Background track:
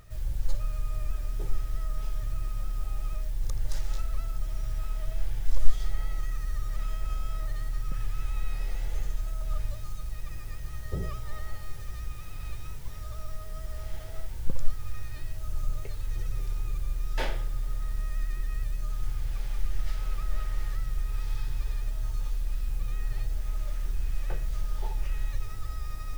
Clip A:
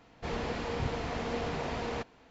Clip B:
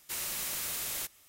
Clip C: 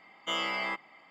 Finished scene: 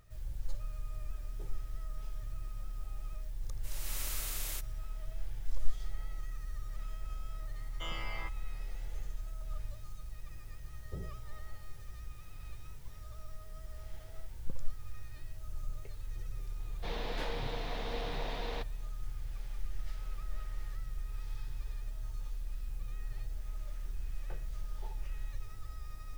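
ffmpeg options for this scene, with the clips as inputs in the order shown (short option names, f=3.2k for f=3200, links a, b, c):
-filter_complex "[0:a]volume=-9.5dB[a];[2:a]dynaudnorm=f=120:g=5:m=12.5dB[b];[1:a]highpass=130,equalizer=f=230:t=q:w=4:g=-7,equalizer=f=360:t=q:w=4:g=-4,equalizer=f=1.3k:t=q:w=4:g=-4,equalizer=f=3.7k:t=q:w=4:g=9,lowpass=f=6.1k:w=0.5412,lowpass=f=6.1k:w=1.3066[c];[b]atrim=end=1.28,asetpts=PTS-STARTPTS,volume=-17dB,afade=t=in:d=0.004:c=hsin,afade=t=out:st=1.276:d=0.004:c=hsin,adelay=3540[d];[3:a]atrim=end=1.1,asetpts=PTS-STARTPTS,volume=-11dB,afade=t=in:d=0.004:c=hsin,afade=t=out:st=1.096:d=0.004:c=hsin,adelay=7530[e];[c]atrim=end=2.3,asetpts=PTS-STARTPTS,volume=-4.5dB,afade=t=in:d=0.004:c=hsin,afade=t=out:st=2.296:d=0.004:c=hsin,adelay=16600[f];[a][d][e][f]amix=inputs=4:normalize=0"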